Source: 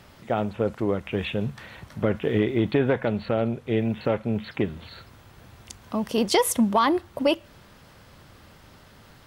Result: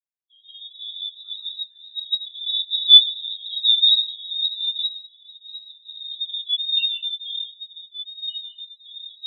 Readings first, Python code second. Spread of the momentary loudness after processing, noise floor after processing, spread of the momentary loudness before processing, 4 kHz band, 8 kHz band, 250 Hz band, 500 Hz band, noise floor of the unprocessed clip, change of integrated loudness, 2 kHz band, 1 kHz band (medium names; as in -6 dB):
23 LU, -56 dBFS, 11 LU, +20.5 dB, under -40 dB, under -40 dB, under -40 dB, -52 dBFS, +6.5 dB, under -10 dB, under -40 dB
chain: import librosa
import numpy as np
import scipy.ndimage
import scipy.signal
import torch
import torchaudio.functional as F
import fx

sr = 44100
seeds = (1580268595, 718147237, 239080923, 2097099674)

y = fx.recorder_agc(x, sr, target_db=-17.0, rise_db_per_s=9.2, max_gain_db=30)
y = fx.spec_gate(y, sr, threshold_db=-20, keep='strong')
y = fx.low_shelf(y, sr, hz=180.0, db=2.5)
y = fx.leveller(y, sr, passes=3)
y = fx.rev_gated(y, sr, seeds[0], gate_ms=220, shape='rising', drr_db=-4.0)
y = fx.echo_pitch(y, sr, ms=227, semitones=-3, count=2, db_per_echo=-3.0)
y = fx.freq_invert(y, sr, carrier_hz=3900)
y = fx.spectral_expand(y, sr, expansion=4.0)
y = y * librosa.db_to_amplitude(-5.5)